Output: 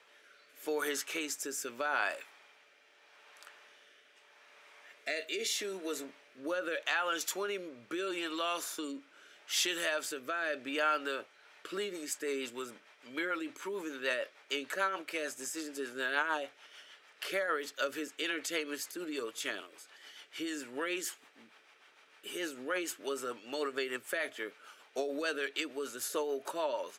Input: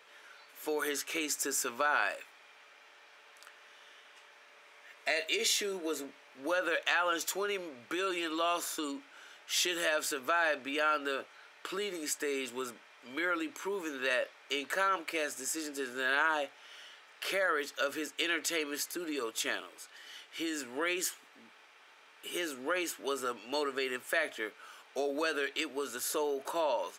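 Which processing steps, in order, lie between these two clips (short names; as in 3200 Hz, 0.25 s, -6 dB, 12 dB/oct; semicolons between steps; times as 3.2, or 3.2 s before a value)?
rotary speaker horn 0.8 Hz, later 6.7 Hz, at 11.14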